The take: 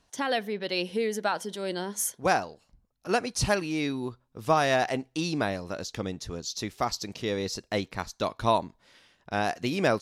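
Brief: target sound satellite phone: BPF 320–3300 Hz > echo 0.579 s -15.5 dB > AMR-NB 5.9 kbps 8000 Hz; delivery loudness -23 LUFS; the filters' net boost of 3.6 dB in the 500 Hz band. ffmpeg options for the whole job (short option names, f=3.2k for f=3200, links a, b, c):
-af "highpass=320,lowpass=3.3k,equalizer=f=500:t=o:g=5.5,aecho=1:1:579:0.168,volume=6dB" -ar 8000 -c:a libopencore_amrnb -b:a 5900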